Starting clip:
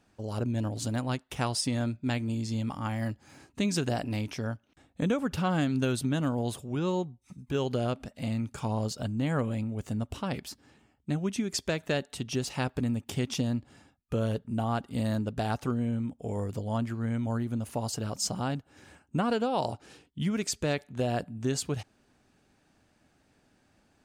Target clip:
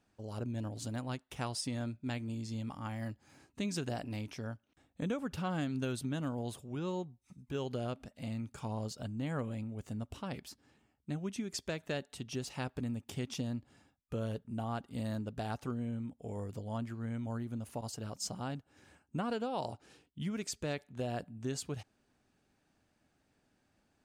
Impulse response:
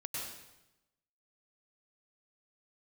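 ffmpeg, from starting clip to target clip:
-filter_complex "[0:a]asettb=1/sr,asplit=3[a][b][c];[a]atrim=end=17.814[d];[b]atrim=start=17.81:end=18.55,asetpts=PTS-STARTPTS,afade=t=in:d=0.004:c=qsin,afade=t=out:st=0.736:d=0.004:c=qsin,agate=range=-33dB:threshold=-32dB:ratio=3:detection=peak[e];[c]atrim=start=18.546[f];[d][e]acrossfade=d=0.004:c1=hsin:c2=qsin[g];[g][f]acrossfade=d=0.004:c1=qsin:c2=hsin,volume=-8dB"

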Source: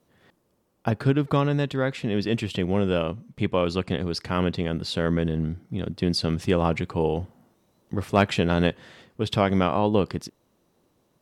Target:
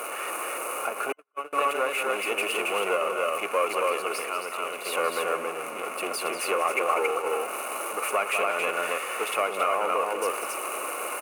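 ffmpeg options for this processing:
-filter_complex "[0:a]aeval=exprs='val(0)+0.5*0.0473*sgn(val(0))':c=same,aecho=1:1:192.4|274.1:0.316|0.708,asettb=1/sr,asplit=3[a][b][c];[a]atrim=end=1.124[d];[b]atrim=start=1.12:end=1.53,asetpts=PTS-STARTPTS,afade=t=in:d=0.004:c=qsin,afade=t=out:st=0.406:d=0.004:c=qsin,agate=range=-57dB:threshold=-13dB:ratio=16:detection=peak[e];[c]atrim=start=1.526[f];[d][e]acrossfade=d=0.004:c1=hsin:c2=qsin[g];[g][f]acrossfade=d=0.004:c1=qsin:c2=hsin,aeval=exprs='(tanh(4.47*val(0)+0.35)-tanh(0.35))/4.47':c=same,tiltshelf=f=940:g=5.5,asettb=1/sr,asplit=3[h][i][j];[h]atrim=end=4.204[k];[i]atrim=start=4.2:end=4.85,asetpts=PTS-STARTPTS,afade=t=in:d=0.004:c=qsin,afade=t=out:st=0.646:d=0.004:c=qsin,acrossover=split=850|2200[l][m][n];[l]acompressor=threshold=-23dB:ratio=4[o];[m]acompressor=threshold=-42dB:ratio=4[p];[n]acompressor=threshold=-40dB:ratio=4[q];[o][p][q]amix=inputs=3:normalize=0[r];[j]atrim=start=4.846[s];[k][r]acrossfade=d=0.004:c1=hsin:c2=qsin[t];[t][s]acrossfade=d=0.004:c1=qsin:c2=hsin,highpass=f=500:w=0.5412,highpass=f=500:w=1.3066,alimiter=limit=-17.5dB:level=0:latency=1:release=308,superequalizer=10b=3.16:12b=3.16:13b=0.398:14b=0.447:16b=3.55"

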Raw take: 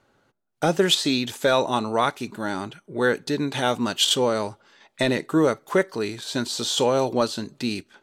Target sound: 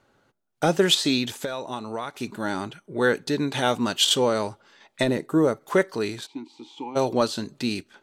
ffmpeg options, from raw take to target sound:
-filter_complex "[0:a]asplit=3[a][b][c];[a]afade=t=out:st=1.32:d=0.02[d];[b]acompressor=threshold=-28dB:ratio=6,afade=t=in:st=1.32:d=0.02,afade=t=out:st=2.14:d=0.02[e];[c]afade=t=in:st=2.14:d=0.02[f];[d][e][f]amix=inputs=3:normalize=0,asplit=3[g][h][i];[g]afade=t=out:st=5.03:d=0.02[j];[h]equalizer=f=3.2k:w=0.47:g=-9,afade=t=in:st=5.03:d=0.02,afade=t=out:st=5.6:d=0.02[k];[i]afade=t=in:st=5.6:d=0.02[l];[j][k][l]amix=inputs=3:normalize=0,asplit=3[m][n][o];[m]afade=t=out:st=6.25:d=0.02[p];[n]asplit=3[q][r][s];[q]bandpass=f=300:t=q:w=8,volume=0dB[t];[r]bandpass=f=870:t=q:w=8,volume=-6dB[u];[s]bandpass=f=2.24k:t=q:w=8,volume=-9dB[v];[t][u][v]amix=inputs=3:normalize=0,afade=t=in:st=6.25:d=0.02,afade=t=out:st=6.95:d=0.02[w];[o]afade=t=in:st=6.95:d=0.02[x];[p][w][x]amix=inputs=3:normalize=0"

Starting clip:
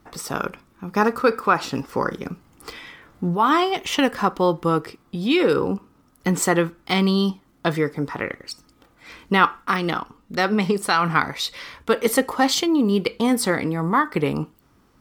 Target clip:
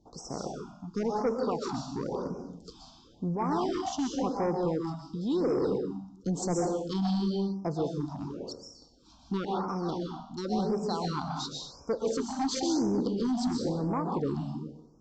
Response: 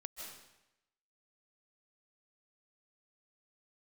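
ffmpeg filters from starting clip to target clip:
-filter_complex "[0:a]asuperstop=centerf=2000:order=4:qfactor=0.55[a];[1:a]atrim=start_sample=2205,asetrate=52920,aresample=44100[b];[a][b]afir=irnorm=-1:irlink=0,aresample=16000,asoftclip=type=tanh:threshold=-22dB,aresample=44100,afftfilt=real='re*(1-between(b*sr/1024,410*pow(3600/410,0.5+0.5*sin(2*PI*0.95*pts/sr))/1.41,410*pow(3600/410,0.5+0.5*sin(2*PI*0.95*pts/sr))*1.41))':imag='im*(1-between(b*sr/1024,410*pow(3600/410,0.5+0.5*sin(2*PI*0.95*pts/sr))/1.41,410*pow(3600/410,0.5+0.5*sin(2*PI*0.95*pts/sr))*1.41))':win_size=1024:overlap=0.75"

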